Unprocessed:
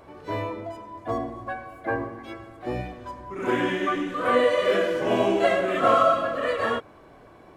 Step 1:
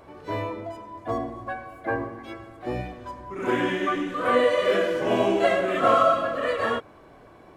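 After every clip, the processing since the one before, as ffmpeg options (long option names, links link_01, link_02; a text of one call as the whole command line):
ffmpeg -i in.wav -af anull out.wav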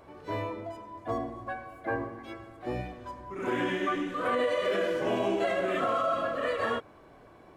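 ffmpeg -i in.wav -af "alimiter=limit=-15.5dB:level=0:latency=1:release=61,volume=-4dB" out.wav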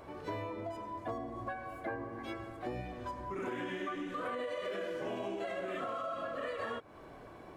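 ffmpeg -i in.wav -af "acompressor=threshold=-39dB:ratio=6,volume=2.5dB" out.wav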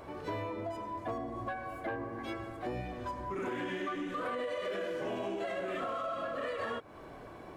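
ffmpeg -i in.wav -af "asoftclip=type=tanh:threshold=-30dB,volume=3dB" out.wav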